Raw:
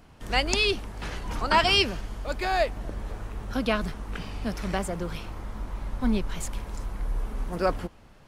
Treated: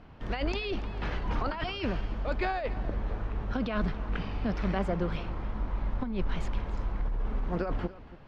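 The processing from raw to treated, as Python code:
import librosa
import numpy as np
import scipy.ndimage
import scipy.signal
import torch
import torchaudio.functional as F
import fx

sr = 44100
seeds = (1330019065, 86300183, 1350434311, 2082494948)

y = fx.over_compress(x, sr, threshold_db=-28.0, ratio=-1.0)
y = fx.air_absorb(y, sr, metres=250.0)
y = y + 10.0 ** (-17.5 / 20.0) * np.pad(y, (int(284 * sr / 1000.0), 0))[:len(y)]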